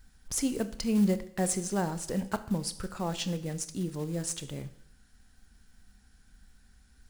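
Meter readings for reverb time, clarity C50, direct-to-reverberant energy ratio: 0.70 s, 15.0 dB, 11.5 dB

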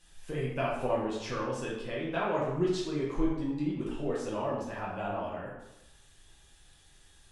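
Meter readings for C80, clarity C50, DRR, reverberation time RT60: 4.5 dB, 1.5 dB, −6.5 dB, 0.90 s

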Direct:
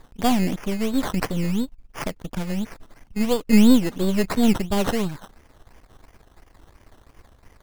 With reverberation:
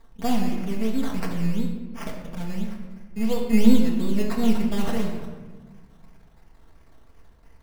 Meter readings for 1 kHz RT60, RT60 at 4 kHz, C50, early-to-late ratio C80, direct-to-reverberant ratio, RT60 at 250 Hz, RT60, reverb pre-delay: 1.2 s, 0.80 s, 4.0 dB, 6.0 dB, −2.0 dB, 2.0 s, 1.3 s, 4 ms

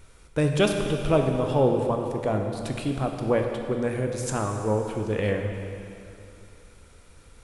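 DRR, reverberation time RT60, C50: 3.0 dB, 2.8 s, 4.0 dB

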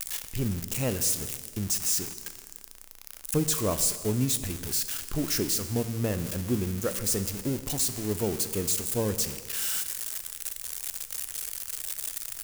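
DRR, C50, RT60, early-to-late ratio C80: 10.5 dB, 12.0 dB, 1.7 s, 13.0 dB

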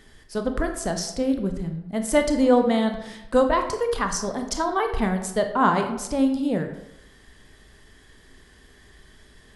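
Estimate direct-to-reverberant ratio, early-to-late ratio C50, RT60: 5.0 dB, 8.0 dB, 0.90 s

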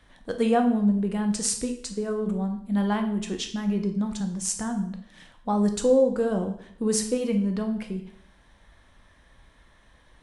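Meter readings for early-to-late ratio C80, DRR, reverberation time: 13.0 dB, 4.5 dB, 0.65 s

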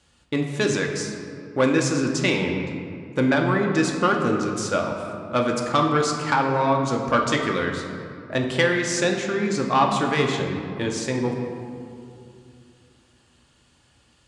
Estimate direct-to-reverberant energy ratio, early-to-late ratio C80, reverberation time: 1.0 dB, 5.5 dB, 2.6 s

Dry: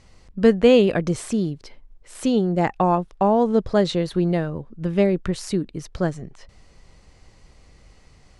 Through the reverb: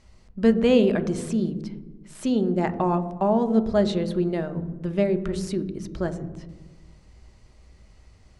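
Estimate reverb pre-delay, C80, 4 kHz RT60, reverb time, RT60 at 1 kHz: 3 ms, 15.5 dB, 0.80 s, 1.2 s, 1.1 s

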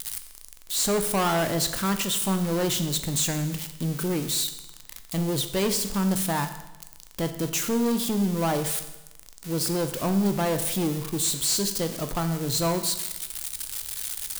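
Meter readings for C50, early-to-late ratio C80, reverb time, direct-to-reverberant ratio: 10.5 dB, 12.5 dB, 1.0 s, 8.0 dB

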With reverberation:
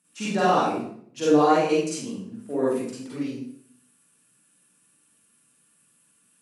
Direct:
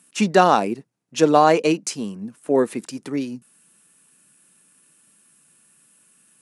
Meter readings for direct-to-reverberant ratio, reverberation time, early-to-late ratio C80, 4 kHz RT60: −9.5 dB, 0.60 s, 3.0 dB, 0.50 s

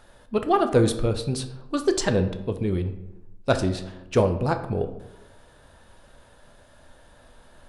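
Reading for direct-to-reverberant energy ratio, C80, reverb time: 7.0 dB, 13.5 dB, 0.95 s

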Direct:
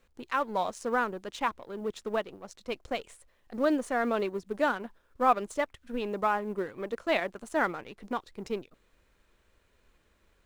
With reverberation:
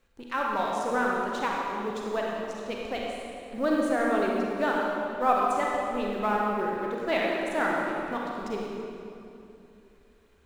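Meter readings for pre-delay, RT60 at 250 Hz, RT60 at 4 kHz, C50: 35 ms, 3.2 s, 2.0 s, −1.5 dB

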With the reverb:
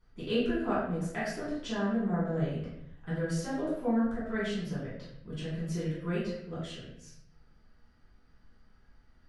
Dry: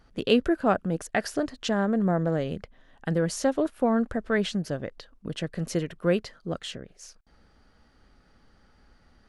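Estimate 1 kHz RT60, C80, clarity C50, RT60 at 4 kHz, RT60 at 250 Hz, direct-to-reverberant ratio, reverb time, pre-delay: 0.70 s, 5.0 dB, 1.0 dB, 0.60 s, 1.0 s, −11.0 dB, 0.75 s, 3 ms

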